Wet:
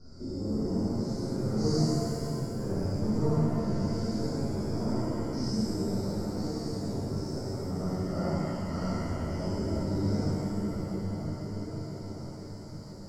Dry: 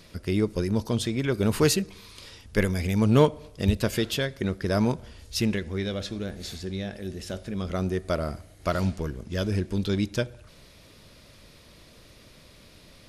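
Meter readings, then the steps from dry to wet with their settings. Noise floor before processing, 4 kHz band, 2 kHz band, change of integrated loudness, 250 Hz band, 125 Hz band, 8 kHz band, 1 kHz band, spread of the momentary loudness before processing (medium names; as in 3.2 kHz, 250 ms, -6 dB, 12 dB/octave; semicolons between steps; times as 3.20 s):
-53 dBFS, -8.5 dB, -14.5 dB, -4.5 dB, -2.0 dB, -2.5 dB, -8.5 dB, -4.5 dB, 12 LU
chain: spectrogram pixelated in time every 200 ms; in parallel at -3.5 dB: saturation -20.5 dBFS, distortion -14 dB; on the sum: elliptic band-stop 1.4–4.7 kHz, stop band 40 dB; de-hum 45.4 Hz, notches 2; on a send: delay with an opening low-pass 492 ms, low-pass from 200 Hz, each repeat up 2 oct, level -6 dB; on the sum: flange 0.21 Hz, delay 2.8 ms, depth 5.2 ms, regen +45%; four-pole ladder low-pass 6.2 kHz, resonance 45%; gain riding within 3 dB 2 s; flange 1.2 Hz, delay 6.3 ms, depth 9.8 ms, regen -54%; bass shelf 190 Hz +5.5 dB; pitch-shifted reverb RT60 2.3 s, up +7 st, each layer -8 dB, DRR -12 dB; trim -4.5 dB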